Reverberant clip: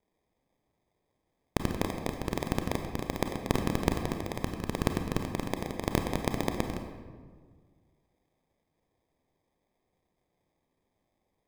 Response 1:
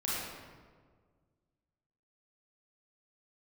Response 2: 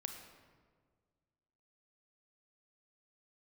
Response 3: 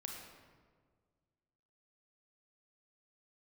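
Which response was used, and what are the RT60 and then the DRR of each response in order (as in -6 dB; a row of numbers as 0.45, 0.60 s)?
2; 1.7, 1.7, 1.7 s; -8.0, 4.5, 0.0 dB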